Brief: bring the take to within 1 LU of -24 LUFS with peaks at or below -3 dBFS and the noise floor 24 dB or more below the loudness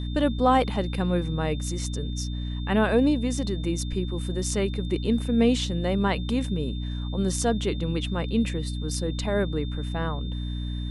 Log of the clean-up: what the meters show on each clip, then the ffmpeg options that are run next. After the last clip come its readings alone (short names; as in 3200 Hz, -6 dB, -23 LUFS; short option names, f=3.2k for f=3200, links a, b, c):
hum 60 Hz; harmonics up to 300 Hz; hum level -28 dBFS; steady tone 3600 Hz; tone level -43 dBFS; loudness -26.5 LUFS; peak -8.5 dBFS; loudness target -24.0 LUFS
-> -af "bandreject=f=60:t=h:w=4,bandreject=f=120:t=h:w=4,bandreject=f=180:t=h:w=4,bandreject=f=240:t=h:w=4,bandreject=f=300:t=h:w=4"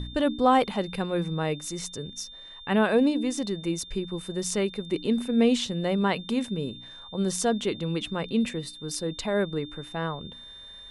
hum none; steady tone 3600 Hz; tone level -43 dBFS
-> -af "bandreject=f=3.6k:w=30"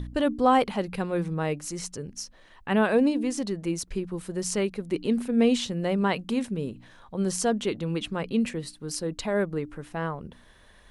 steady tone none; loudness -27.5 LUFS; peak -9.5 dBFS; loudness target -24.0 LUFS
-> -af "volume=3.5dB"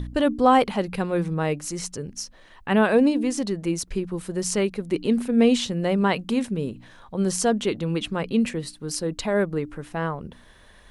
loudness -24.0 LUFS; peak -6.0 dBFS; noise floor -51 dBFS